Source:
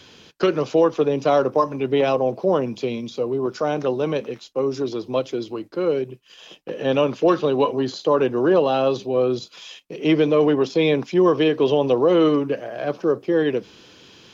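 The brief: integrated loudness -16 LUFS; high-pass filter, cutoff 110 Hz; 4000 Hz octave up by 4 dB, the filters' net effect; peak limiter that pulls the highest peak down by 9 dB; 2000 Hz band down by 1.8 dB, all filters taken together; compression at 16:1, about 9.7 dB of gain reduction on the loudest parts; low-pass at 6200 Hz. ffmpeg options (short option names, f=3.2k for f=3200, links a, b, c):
-af "highpass=110,lowpass=6.2k,equalizer=f=2k:t=o:g=-5,equalizer=f=4k:t=o:g=8,acompressor=threshold=-22dB:ratio=16,volume=14.5dB,alimiter=limit=-6.5dB:level=0:latency=1"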